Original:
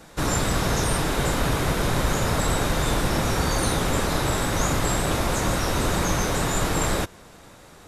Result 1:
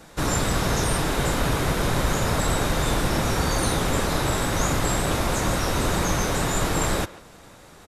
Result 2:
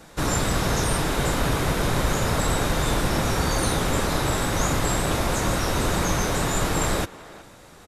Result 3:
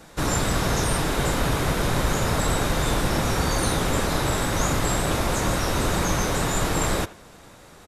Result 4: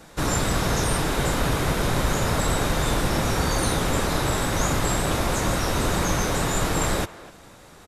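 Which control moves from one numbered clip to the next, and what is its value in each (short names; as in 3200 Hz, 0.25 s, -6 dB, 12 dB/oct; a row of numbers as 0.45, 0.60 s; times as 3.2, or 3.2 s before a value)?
speakerphone echo, time: 140, 370, 80, 250 ms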